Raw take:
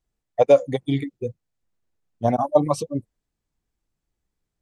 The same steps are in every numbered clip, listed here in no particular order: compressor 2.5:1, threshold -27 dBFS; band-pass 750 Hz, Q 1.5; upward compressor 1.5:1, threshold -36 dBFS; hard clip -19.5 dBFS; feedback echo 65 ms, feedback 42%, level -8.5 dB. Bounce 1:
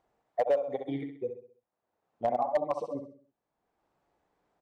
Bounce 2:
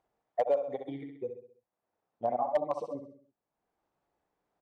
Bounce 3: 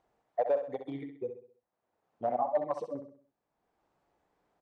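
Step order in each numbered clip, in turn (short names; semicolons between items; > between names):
band-pass > upward compressor > feedback echo > compressor > hard clip; feedback echo > upward compressor > compressor > band-pass > hard clip; compressor > hard clip > band-pass > upward compressor > feedback echo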